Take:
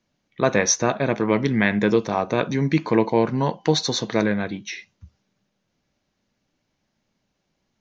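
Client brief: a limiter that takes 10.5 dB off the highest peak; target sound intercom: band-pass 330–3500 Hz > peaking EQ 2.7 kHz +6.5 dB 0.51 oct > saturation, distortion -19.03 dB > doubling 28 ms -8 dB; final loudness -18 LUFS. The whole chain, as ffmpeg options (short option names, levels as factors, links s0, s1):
-filter_complex "[0:a]alimiter=limit=0.2:level=0:latency=1,highpass=330,lowpass=3500,equalizer=f=2700:t=o:w=0.51:g=6.5,asoftclip=threshold=0.126,asplit=2[s0][s1];[s1]adelay=28,volume=0.398[s2];[s0][s2]amix=inputs=2:normalize=0,volume=3.76"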